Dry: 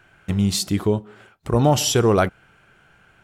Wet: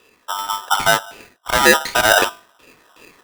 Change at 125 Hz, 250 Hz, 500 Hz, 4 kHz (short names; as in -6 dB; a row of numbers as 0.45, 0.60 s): -15.0, -7.0, +0.5, +6.5 dB